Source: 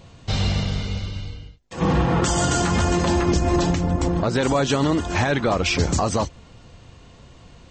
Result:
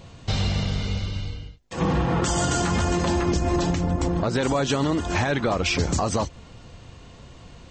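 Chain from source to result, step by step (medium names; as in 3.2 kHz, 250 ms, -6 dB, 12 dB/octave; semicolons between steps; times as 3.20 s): compression 2:1, threshold -24 dBFS, peak gain reduction 5.5 dB; trim +1.5 dB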